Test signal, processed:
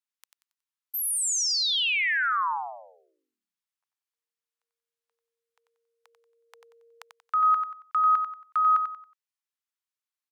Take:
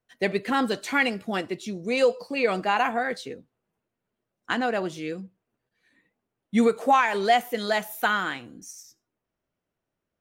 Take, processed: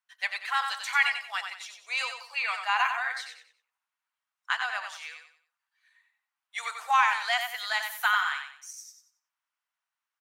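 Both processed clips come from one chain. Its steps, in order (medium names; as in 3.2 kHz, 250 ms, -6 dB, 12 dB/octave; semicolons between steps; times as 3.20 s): steep high-pass 920 Hz 36 dB/octave; treble shelf 11 kHz -5.5 dB; on a send: feedback delay 92 ms, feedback 31%, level -6.5 dB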